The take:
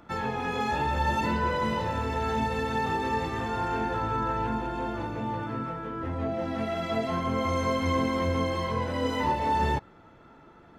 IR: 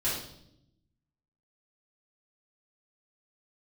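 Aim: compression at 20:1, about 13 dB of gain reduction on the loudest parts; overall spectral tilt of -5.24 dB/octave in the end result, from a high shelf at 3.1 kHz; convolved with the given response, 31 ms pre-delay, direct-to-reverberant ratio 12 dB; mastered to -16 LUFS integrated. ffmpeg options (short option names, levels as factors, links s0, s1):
-filter_complex "[0:a]highshelf=f=3100:g=-3,acompressor=threshold=0.0178:ratio=20,asplit=2[s0][s1];[1:a]atrim=start_sample=2205,adelay=31[s2];[s1][s2]afir=irnorm=-1:irlink=0,volume=0.1[s3];[s0][s3]amix=inputs=2:normalize=0,volume=14.1"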